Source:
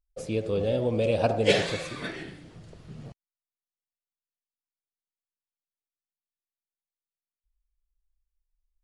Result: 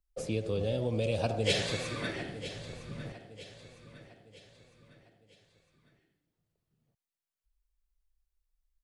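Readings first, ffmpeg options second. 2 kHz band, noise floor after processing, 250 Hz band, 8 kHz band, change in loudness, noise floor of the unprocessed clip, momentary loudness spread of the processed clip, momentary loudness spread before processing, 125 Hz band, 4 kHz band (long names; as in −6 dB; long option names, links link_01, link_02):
−4.5 dB, below −85 dBFS, −5.0 dB, 0.0 dB, −6.5 dB, below −85 dBFS, 20 LU, 22 LU, −1.5 dB, −2.0 dB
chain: -filter_complex "[0:a]acrossover=split=130|3000[link_01][link_02][link_03];[link_02]acompressor=threshold=-33dB:ratio=2.5[link_04];[link_01][link_04][link_03]amix=inputs=3:normalize=0,aecho=1:1:956|1912|2868|3824:0.211|0.093|0.0409|0.018"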